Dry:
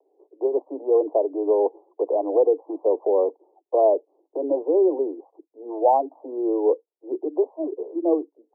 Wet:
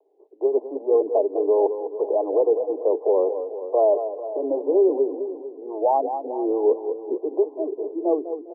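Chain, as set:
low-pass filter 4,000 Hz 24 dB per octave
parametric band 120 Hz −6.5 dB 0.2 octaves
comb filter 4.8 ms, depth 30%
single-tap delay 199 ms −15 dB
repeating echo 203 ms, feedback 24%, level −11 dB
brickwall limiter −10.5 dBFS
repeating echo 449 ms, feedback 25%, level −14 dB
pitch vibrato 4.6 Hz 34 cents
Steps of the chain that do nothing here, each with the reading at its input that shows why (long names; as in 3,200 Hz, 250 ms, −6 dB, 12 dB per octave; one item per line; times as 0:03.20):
low-pass filter 4,000 Hz: nothing at its input above 1,100 Hz
parametric band 120 Hz: nothing at its input below 240 Hz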